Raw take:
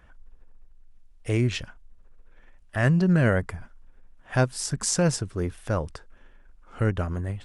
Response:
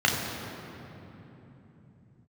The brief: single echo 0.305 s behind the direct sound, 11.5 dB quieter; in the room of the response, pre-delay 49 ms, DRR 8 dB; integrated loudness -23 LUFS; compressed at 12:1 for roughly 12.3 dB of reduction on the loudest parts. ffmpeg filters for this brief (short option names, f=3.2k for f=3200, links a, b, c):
-filter_complex "[0:a]acompressor=threshold=-29dB:ratio=12,aecho=1:1:305:0.266,asplit=2[a][b];[1:a]atrim=start_sample=2205,adelay=49[c];[b][c]afir=irnorm=-1:irlink=0,volume=-24dB[d];[a][d]amix=inputs=2:normalize=0,volume=12dB"